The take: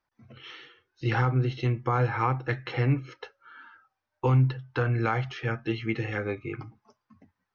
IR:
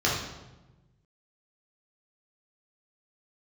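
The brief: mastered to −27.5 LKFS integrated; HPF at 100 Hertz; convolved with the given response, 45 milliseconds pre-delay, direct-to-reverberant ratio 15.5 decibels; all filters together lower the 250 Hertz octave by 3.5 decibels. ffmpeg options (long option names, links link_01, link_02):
-filter_complex "[0:a]highpass=100,equalizer=frequency=250:width_type=o:gain=-5,asplit=2[link_01][link_02];[1:a]atrim=start_sample=2205,adelay=45[link_03];[link_02][link_03]afir=irnorm=-1:irlink=0,volume=-29dB[link_04];[link_01][link_04]amix=inputs=2:normalize=0,volume=1.5dB"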